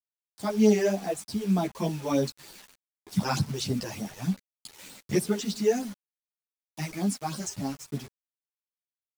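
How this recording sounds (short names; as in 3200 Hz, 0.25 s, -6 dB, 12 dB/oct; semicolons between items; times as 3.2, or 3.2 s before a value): phasing stages 12, 3.3 Hz, lowest notch 210–2500 Hz; a quantiser's noise floor 8-bit, dither none; a shimmering, thickened sound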